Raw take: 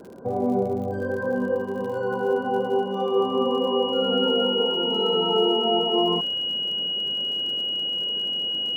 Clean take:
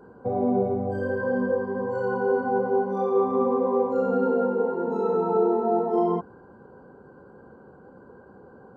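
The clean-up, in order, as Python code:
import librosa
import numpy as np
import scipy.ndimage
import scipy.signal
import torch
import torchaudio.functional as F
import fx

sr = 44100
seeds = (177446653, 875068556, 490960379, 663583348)

y = fx.fix_declick_ar(x, sr, threshold=6.5)
y = fx.notch(y, sr, hz=2900.0, q=30.0)
y = fx.noise_reduce(y, sr, print_start_s=0.0, print_end_s=0.5, reduce_db=22.0)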